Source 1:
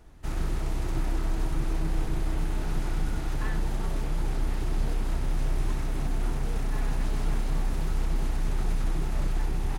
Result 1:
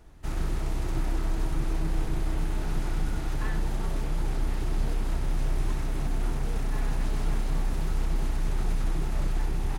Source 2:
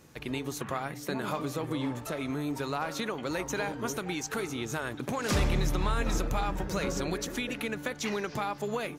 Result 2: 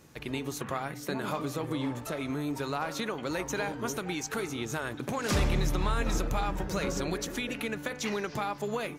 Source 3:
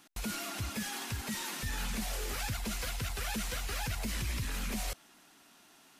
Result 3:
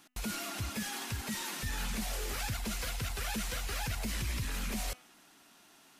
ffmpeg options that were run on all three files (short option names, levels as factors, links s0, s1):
-af "bandreject=f=250:t=h:w=4,bandreject=f=500:t=h:w=4,bandreject=f=750:t=h:w=4,bandreject=f=1000:t=h:w=4,bandreject=f=1250:t=h:w=4,bandreject=f=1500:t=h:w=4,bandreject=f=1750:t=h:w=4,bandreject=f=2000:t=h:w=4,bandreject=f=2250:t=h:w=4,bandreject=f=2500:t=h:w=4,bandreject=f=2750:t=h:w=4,bandreject=f=3000:t=h:w=4"